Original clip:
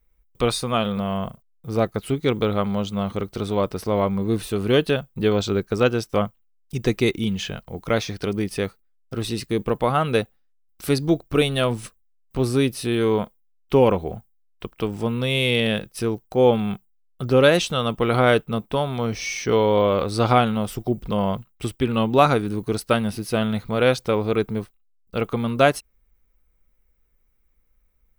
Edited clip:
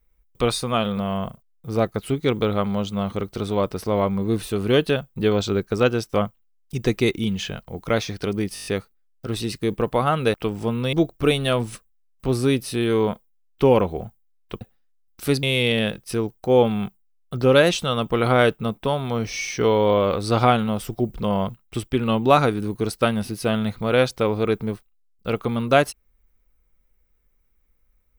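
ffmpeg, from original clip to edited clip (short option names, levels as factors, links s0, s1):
-filter_complex "[0:a]asplit=11[s0][s1][s2][s3][s4][s5][s6][s7][s8][s9][s10];[s0]atrim=end=8.562[s11];[s1]atrim=start=8.538:end=8.562[s12];[s2]atrim=start=8.538:end=8.562[s13];[s3]atrim=start=8.538:end=8.562[s14];[s4]atrim=start=8.538:end=8.562[s15];[s5]atrim=start=8.538:end=8.562[s16];[s6]atrim=start=8.538:end=10.222[s17];[s7]atrim=start=14.718:end=15.312[s18];[s8]atrim=start=11.038:end=14.722[s19];[s9]atrim=start=10.218:end=11.042[s20];[s10]atrim=start=15.308[s21];[s11][s12]acrossfade=d=0.004:c1=hsin:c2=hsin[s22];[s22][s13]acrossfade=d=0.004:c1=hsin:c2=hsin[s23];[s23][s14]acrossfade=d=0.004:c1=hsin:c2=hsin[s24];[s24][s15]acrossfade=d=0.004:c1=hsin:c2=hsin[s25];[s25][s16]acrossfade=d=0.004:c1=hsin:c2=hsin[s26];[s26][s17]acrossfade=d=0.004:c1=hsin:c2=hsin[s27];[s27][s18]acrossfade=d=0.004:c1=hsin:c2=hsin[s28];[s28][s19]acrossfade=d=0.004:c1=hsin:c2=hsin[s29];[s29][s20]acrossfade=d=0.004:c1=hsin:c2=hsin[s30];[s30][s21]acrossfade=d=0.004:c1=hsin:c2=hsin"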